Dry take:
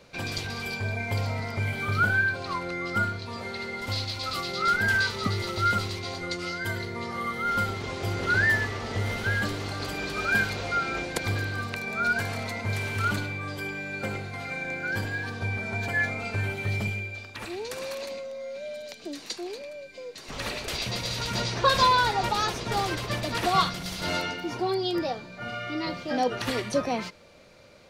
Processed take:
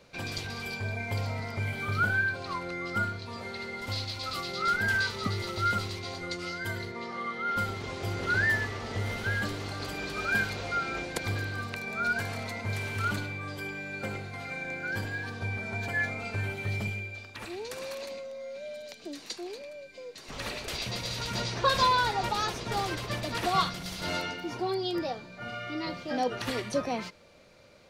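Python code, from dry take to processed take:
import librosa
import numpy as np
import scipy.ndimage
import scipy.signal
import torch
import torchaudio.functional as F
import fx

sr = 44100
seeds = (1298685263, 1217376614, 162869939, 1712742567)

y = fx.bandpass_edges(x, sr, low_hz=190.0, high_hz=fx.line((6.91, 7000.0), (7.55, 4200.0)), at=(6.91, 7.55), fade=0.02)
y = y * 10.0 ** (-3.5 / 20.0)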